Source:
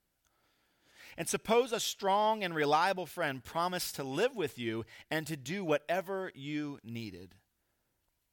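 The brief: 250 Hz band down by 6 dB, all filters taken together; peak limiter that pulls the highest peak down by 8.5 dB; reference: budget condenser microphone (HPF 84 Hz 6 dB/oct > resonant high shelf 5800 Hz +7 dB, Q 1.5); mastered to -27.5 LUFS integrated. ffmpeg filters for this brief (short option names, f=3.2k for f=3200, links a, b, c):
-af "equalizer=f=250:t=o:g=-8,alimiter=limit=-23.5dB:level=0:latency=1,highpass=f=84:p=1,highshelf=f=5.8k:t=q:w=1.5:g=7,volume=8dB"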